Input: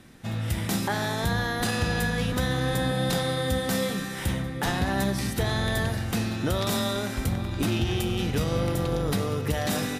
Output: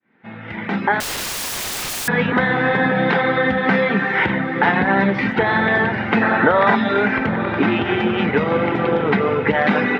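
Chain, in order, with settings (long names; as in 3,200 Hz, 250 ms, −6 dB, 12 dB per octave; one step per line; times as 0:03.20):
fade in at the beginning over 2.41 s
0:06.22–0:06.75: gain on a spectral selection 450–2,000 Hz +8 dB
reverb reduction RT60 0.85 s
downward compressor 3 to 1, threshold −32 dBFS, peak gain reduction 10 dB
loudspeaker in its box 200–2,800 Hz, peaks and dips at 210 Hz +6 dB, 420 Hz +5 dB, 890 Hz +8 dB, 1,500 Hz +7 dB, 2,100 Hz +9 dB
feedback delay with all-pass diffusion 934 ms, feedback 47%, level −11.5 dB
on a send at −17.5 dB: convolution reverb RT60 0.50 s, pre-delay 86 ms
0:01.00–0:02.08: on the sum: wrap-around overflow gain 36.5 dB
boost into a limiter +16.5 dB
level −1 dB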